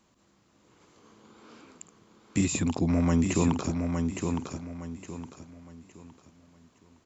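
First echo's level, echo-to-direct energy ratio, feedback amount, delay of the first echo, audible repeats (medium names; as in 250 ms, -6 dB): -5.0 dB, -4.5 dB, 32%, 863 ms, 4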